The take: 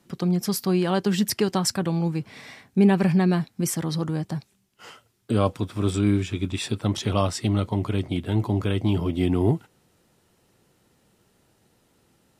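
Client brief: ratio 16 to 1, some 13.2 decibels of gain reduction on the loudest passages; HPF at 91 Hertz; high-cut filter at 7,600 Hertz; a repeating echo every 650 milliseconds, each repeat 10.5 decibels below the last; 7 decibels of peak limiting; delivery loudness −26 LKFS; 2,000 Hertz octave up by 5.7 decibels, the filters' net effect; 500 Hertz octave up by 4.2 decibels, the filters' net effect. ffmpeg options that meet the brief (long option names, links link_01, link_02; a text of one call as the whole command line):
ffmpeg -i in.wav -af "highpass=91,lowpass=7600,equalizer=frequency=500:width_type=o:gain=5.5,equalizer=frequency=2000:width_type=o:gain=7,acompressor=threshold=-25dB:ratio=16,alimiter=limit=-21dB:level=0:latency=1,aecho=1:1:650|1300|1950:0.299|0.0896|0.0269,volume=7dB" out.wav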